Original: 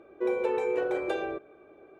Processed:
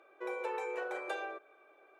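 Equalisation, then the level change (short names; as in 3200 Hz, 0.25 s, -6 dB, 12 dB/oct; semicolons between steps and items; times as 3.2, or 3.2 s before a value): HPF 870 Hz 12 dB/oct; dynamic EQ 3200 Hz, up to -5 dB, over -53 dBFS, Q 0.98; 0.0 dB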